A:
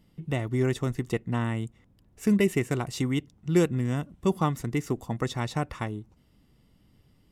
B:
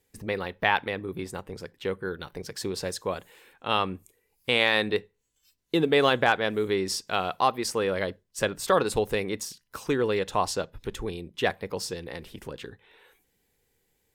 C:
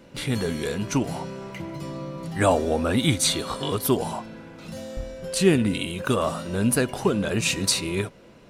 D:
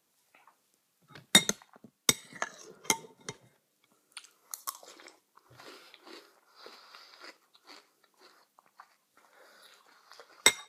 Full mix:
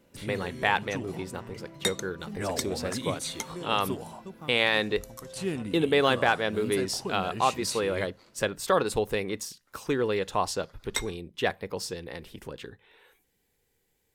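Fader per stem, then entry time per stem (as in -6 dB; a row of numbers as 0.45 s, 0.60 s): -19.0 dB, -1.5 dB, -13.0 dB, -8.5 dB; 0.00 s, 0.00 s, 0.00 s, 0.50 s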